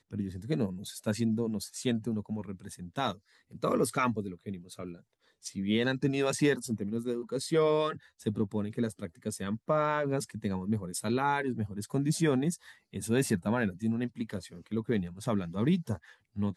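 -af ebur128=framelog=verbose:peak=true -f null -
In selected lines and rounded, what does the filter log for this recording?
Integrated loudness:
  I:         -31.8 LUFS
  Threshold: -42.2 LUFS
Loudness range:
  LRA:         3.5 LU
  Threshold: -52.0 LUFS
  LRA low:   -34.0 LUFS
  LRA high:  -30.5 LUFS
True peak:
  Peak:      -14.7 dBFS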